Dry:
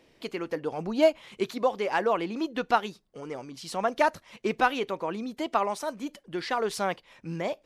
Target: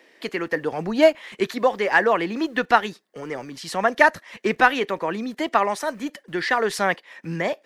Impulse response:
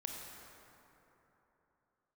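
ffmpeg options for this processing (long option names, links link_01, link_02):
-filter_complex "[0:a]equalizer=frequency=1800:width_type=o:width=0.38:gain=11.5,acrossover=split=240|850|2600[link_01][link_02][link_03][link_04];[link_01]aeval=exprs='val(0)*gte(abs(val(0)),0.00158)':channel_layout=same[link_05];[link_05][link_02][link_03][link_04]amix=inputs=4:normalize=0,volume=5.5dB"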